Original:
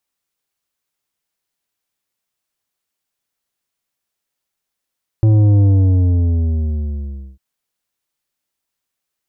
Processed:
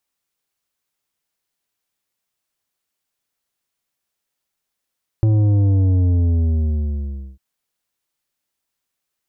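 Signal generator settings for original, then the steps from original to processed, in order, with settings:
sub drop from 110 Hz, over 2.15 s, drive 9 dB, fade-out 1.78 s, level -9 dB
compressor, threshold -14 dBFS

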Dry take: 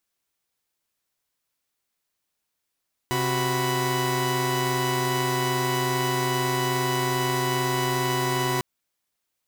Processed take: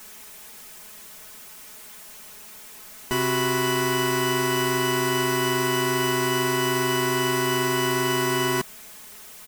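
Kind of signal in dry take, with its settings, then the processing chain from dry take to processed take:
chord C3/F#4/B5 saw, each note -24.5 dBFS 5.50 s
zero-crossing step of -39.5 dBFS; bell 4200 Hz -4 dB 0.77 oct; comb 4.7 ms, depth 96%

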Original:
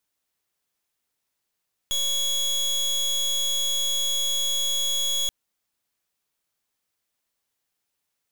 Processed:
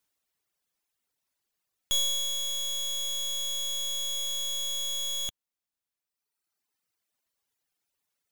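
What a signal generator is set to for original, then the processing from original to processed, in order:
pulse 3350 Hz, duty 28% -24.5 dBFS 3.38 s
reverb removal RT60 1.7 s

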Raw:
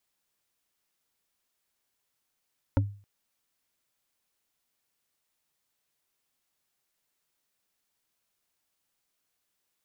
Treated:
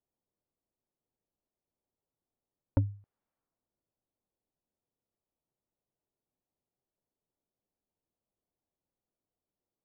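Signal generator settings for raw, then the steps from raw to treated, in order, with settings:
wood hit, length 0.27 s, lowest mode 101 Hz, decay 0.40 s, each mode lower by 3 dB, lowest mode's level -18 dB
low-pass opened by the level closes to 580 Hz, open at -46.5 dBFS; LPF 1100 Hz 12 dB/oct

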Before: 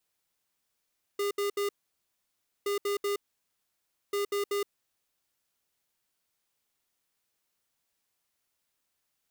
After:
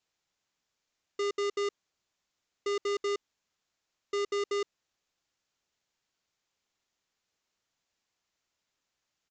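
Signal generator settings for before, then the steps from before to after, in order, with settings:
beep pattern square 405 Hz, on 0.12 s, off 0.07 s, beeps 3, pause 0.97 s, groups 3, -29.5 dBFS
downsampling 16000 Hz

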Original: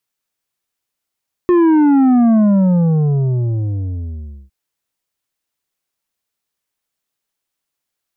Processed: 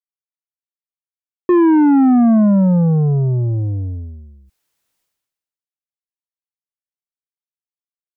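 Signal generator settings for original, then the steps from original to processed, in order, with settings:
sub drop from 360 Hz, over 3.01 s, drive 7.5 dB, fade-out 2.16 s, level -9 dB
expander -21 dBFS; sustainer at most 45 dB/s

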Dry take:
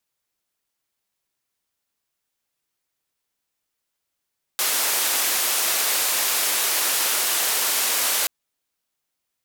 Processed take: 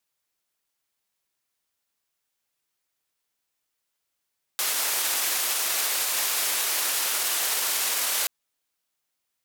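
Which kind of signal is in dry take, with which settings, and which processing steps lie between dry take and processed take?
noise band 420–16000 Hz, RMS -22 dBFS 3.68 s
limiter -16 dBFS; low shelf 490 Hz -4 dB

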